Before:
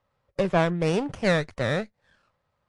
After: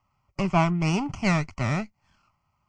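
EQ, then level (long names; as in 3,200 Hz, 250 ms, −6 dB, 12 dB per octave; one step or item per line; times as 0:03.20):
phaser with its sweep stopped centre 2,500 Hz, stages 8
+4.5 dB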